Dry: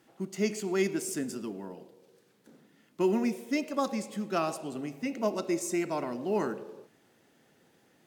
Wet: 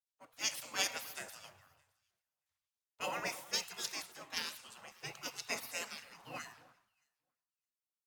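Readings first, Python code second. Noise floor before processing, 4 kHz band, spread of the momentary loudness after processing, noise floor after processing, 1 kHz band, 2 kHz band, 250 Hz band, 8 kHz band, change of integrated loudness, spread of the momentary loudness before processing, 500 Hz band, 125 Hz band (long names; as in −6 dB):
−66 dBFS, +5.0 dB, 14 LU, below −85 dBFS, −9.5 dB, −1.5 dB, −25.5 dB, −1.0 dB, −8.0 dB, 11 LU, −18.5 dB, −18.0 dB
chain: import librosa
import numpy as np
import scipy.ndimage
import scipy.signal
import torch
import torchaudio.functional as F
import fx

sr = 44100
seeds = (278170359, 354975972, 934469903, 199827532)

y = fx.spec_gate(x, sr, threshold_db=-25, keep='weak')
y = fx.echo_alternate(y, sr, ms=310, hz=1500.0, feedback_pct=51, wet_db=-10.5)
y = fx.band_widen(y, sr, depth_pct=100)
y = y * 10.0 ** (4.5 / 20.0)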